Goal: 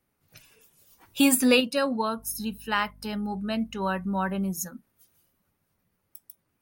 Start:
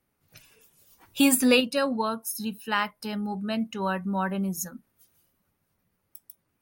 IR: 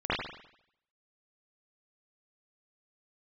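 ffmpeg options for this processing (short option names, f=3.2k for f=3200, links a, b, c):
-filter_complex "[0:a]asettb=1/sr,asplit=3[a][b][c];[a]atrim=end=2.184[d];[b]atrim=start=2.18:end=4.52,asetpts=PTS-STARTPTS,afade=t=in:d=0.004:c=qsin,afade=t=out:st=2.336:d=0.004:c=qsin,aeval=exprs='val(0)+0.00282*(sin(2*PI*50*n/s)+sin(2*PI*2*50*n/s)/2+sin(2*PI*3*50*n/s)/3+sin(2*PI*4*50*n/s)/4+sin(2*PI*5*50*n/s)/5)':c=same[e];[c]atrim=start=4.516[f];[d][e]acrossfade=d=0.004:c1=hsin:c2=qsin[g];[g][f]acrossfade=d=0.004:c1=qsin:c2=hsin"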